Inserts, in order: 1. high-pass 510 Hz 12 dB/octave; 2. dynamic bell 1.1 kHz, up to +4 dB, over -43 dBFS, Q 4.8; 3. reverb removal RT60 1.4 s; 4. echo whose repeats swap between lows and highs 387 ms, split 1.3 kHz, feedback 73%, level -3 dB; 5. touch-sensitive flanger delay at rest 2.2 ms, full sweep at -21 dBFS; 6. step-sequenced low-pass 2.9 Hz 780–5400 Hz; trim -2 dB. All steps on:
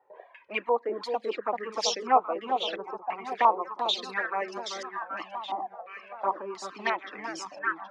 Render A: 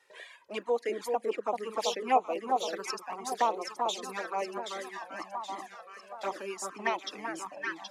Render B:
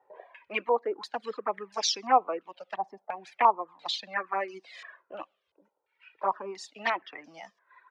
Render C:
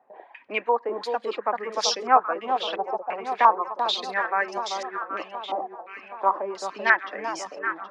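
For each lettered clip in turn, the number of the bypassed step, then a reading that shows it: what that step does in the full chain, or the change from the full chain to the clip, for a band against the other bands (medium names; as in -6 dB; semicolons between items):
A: 6, 4 kHz band -5.0 dB; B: 4, momentary loudness spread change +9 LU; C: 5, 2 kHz band +4.5 dB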